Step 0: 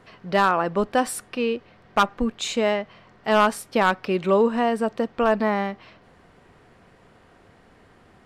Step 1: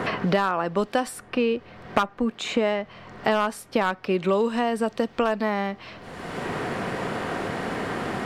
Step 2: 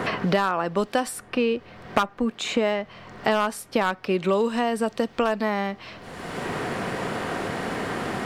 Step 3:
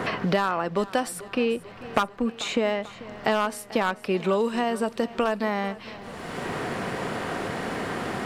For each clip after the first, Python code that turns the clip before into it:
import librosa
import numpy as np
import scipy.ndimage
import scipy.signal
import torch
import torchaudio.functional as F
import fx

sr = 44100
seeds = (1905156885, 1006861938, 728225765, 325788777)

y1 = fx.band_squash(x, sr, depth_pct=100)
y1 = y1 * librosa.db_to_amplitude(-2.5)
y2 = fx.high_shelf(y1, sr, hz=4700.0, db=4.5)
y3 = fx.echo_feedback(y2, sr, ms=440, feedback_pct=59, wet_db=-18.0)
y3 = y3 * librosa.db_to_amplitude(-1.5)